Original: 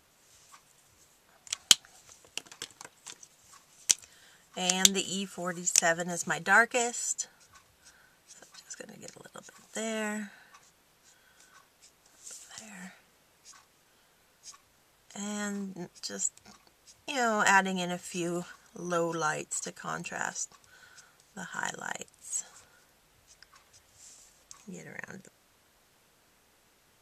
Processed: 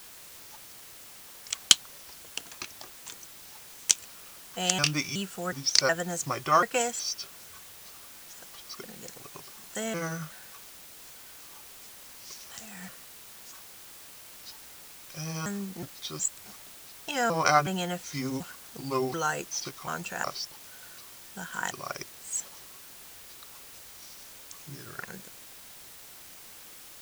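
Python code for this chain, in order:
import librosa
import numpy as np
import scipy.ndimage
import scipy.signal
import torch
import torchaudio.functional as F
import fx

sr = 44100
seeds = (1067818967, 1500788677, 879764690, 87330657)

y = fx.pitch_trill(x, sr, semitones=-4.5, every_ms=368)
y = fx.dmg_noise_colour(y, sr, seeds[0], colour='white', level_db=-50.0)
y = y * 10.0 ** (1.5 / 20.0)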